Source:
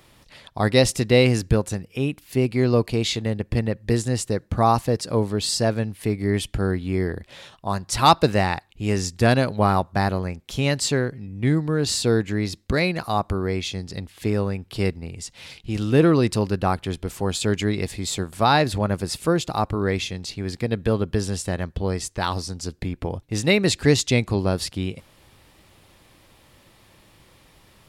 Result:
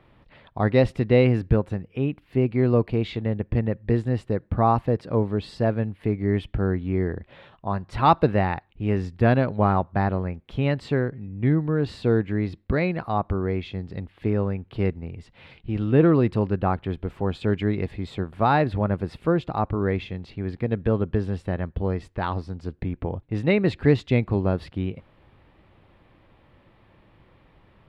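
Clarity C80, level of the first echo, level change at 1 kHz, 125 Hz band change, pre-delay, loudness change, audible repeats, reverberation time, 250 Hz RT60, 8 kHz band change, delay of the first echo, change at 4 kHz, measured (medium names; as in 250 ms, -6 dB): no reverb, no echo, -2.0 dB, 0.0 dB, no reverb, -1.5 dB, no echo, no reverb, no reverb, under -25 dB, no echo, -14.0 dB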